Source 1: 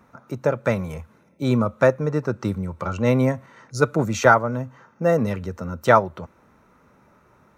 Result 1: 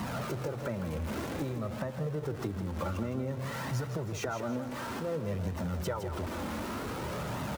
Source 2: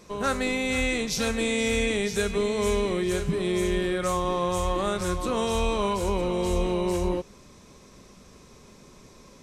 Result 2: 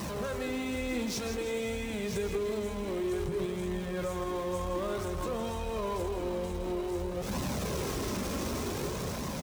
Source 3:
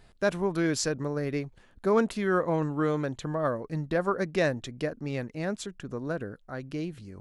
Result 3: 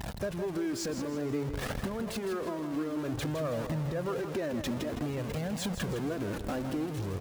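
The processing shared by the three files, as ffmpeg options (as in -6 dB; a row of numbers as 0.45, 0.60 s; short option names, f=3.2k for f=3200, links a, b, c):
-af "aeval=exprs='val(0)+0.5*0.0668*sgn(val(0))':c=same,highpass=54,tiltshelf=f=970:g=4,dynaudnorm=f=230:g=9:m=11.5dB,alimiter=limit=-11dB:level=0:latency=1:release=297,acompressor=threshold=-23dB:ratio=6,flanger=delay=1:depth=2.8:regen=-29:speed=0.54:shape=triangular,aecho=1:1:161|322|483|644|805:0.355|0.145|0.0596|0.0245|0.01,volume=-4.5dB"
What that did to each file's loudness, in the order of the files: -14.0, -7.5, -4.0 LU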